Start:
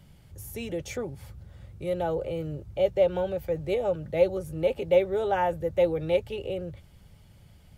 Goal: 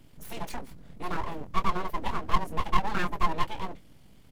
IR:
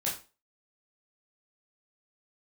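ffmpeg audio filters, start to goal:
-af "aecho=1:1:21|44:0.473|0.282,aeval=exprs='abs(val(0))':c=same,atempo=1.8"

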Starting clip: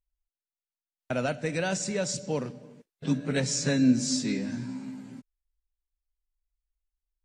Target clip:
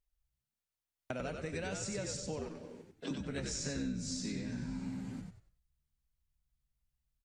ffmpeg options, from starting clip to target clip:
-filter_complex "[0:a]asettb=1/sr,asplit=3[s0][s1][s2];[s0]atrim=end=2.374[s3];[s1]atrim=start=2.37:end=3.11,asetpts=PTS-STARTPTS,afade=t=in:d=0.004:c=qsin,afade=t=out:st=0.736:d=0.004:c=qsin,highpass=f=250:w=0.5412,highpass=f=250:w=1.3066[s4];[s2]atrim=start=3.106[s5];[s3][s4]acrossfade=d=0.004:c1=hsin:c2=qsin[s6];[s6][s5]acrossfade=d=0.004:c1=qsin:c2=hsin,acompressor=threshold=0.0126:ratio=6,asplit=2[s7][s8];[s8]asplit=4[s9][s10][s11][s12];[s9]adelay=94,afreqshift=-75,volume=0.631[s13];[s10]adelay=188,afreqshift=-150,volume=0.195[s14];[s11]adelay=282,afreqshift=-225,volume=0.061[s15];[s12]adelay=376,afreqshift=-300,volume=0.0188[s16];[s13][s14][s15][s16]amix=inputs=4:normalize=0[s17];[s7][s17]amix=inputs=2:normalize=0"

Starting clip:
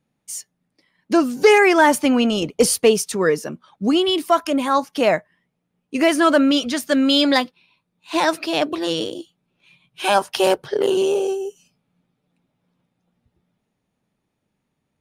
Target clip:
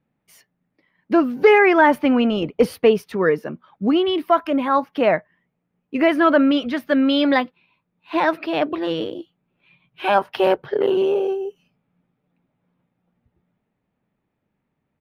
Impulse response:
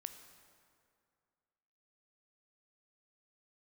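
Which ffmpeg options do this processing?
-af "firequalizer=gain_entry='entry(2000,0);entry(7400,-29);entry(13000,-12)':delay=0.05:min_phase=1"

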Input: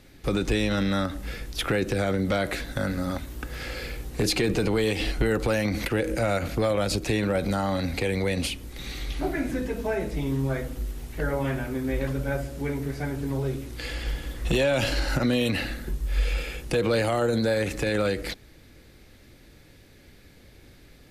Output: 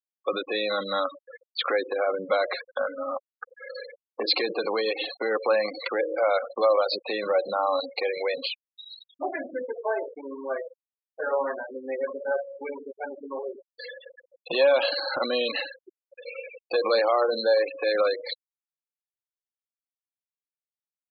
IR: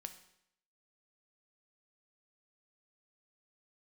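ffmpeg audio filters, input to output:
-af "highpass=490,equalizer=f=540:t=q:w=4:g=7,equalizer=f=770:t=q:w=4:g=3,equalizer=f=1100:t=q:w=4:g=10,equalizer=f=4200:t=q:w=4:g=9,lowpass=f=4600:w=0.5412,lowpass=f=4600:w=1.3066,afftfilt=real='re*gte(hypot(re,im),0.0631)':imag='im*gte(hypot(re,im),0.0631)':win_size=1024:overlap=0.75"

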